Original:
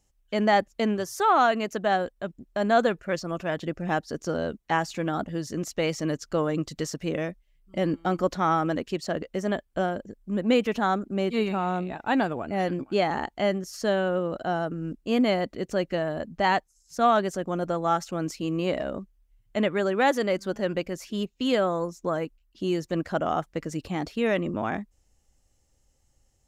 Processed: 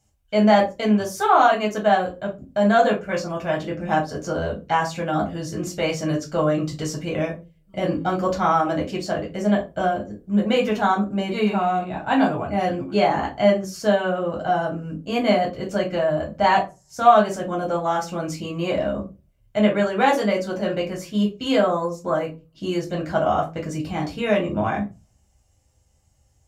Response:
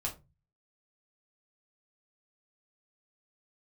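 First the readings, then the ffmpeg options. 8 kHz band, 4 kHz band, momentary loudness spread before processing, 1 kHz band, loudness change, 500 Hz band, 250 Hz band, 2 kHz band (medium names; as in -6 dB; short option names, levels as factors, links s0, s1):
+3.5 dB, +4.0 dB, 9 LU, +6.0 dB, +5.0 dB, +5.0 dB, +5.0 dB, +3.5 dB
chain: -filter_complex "[0:a]highpass=55[s0];[1:a]atrim=start_sample=2205,asetrate=40131,aresample=44100[s1];[s0][s1]afir=irnorm=-1:irlink=0,volume=1.26"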